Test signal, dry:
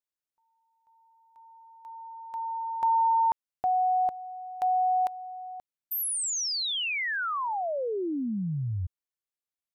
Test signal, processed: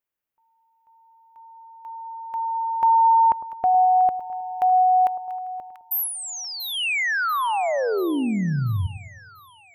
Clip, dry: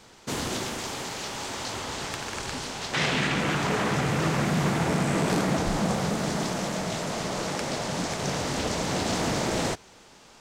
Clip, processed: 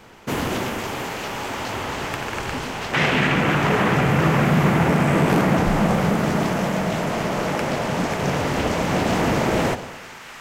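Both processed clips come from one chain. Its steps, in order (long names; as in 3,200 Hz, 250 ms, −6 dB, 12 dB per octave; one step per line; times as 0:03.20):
flat-topped bell 5,900 Hz −9.5 dB
on a send: echo with a time of its own for lows and highs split 1,100 Hz, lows 105 ms, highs 688 ms, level −12.5 dB
on the sum: level +7 dB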